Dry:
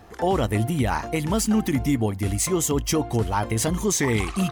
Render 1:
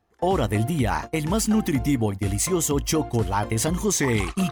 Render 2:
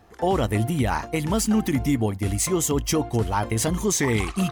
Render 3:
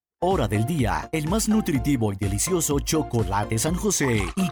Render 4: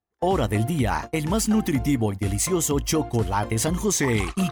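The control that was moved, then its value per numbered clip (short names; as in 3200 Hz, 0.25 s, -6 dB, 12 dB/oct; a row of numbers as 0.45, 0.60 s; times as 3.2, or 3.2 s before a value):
gate, range: -22, -6, -53, -40 dB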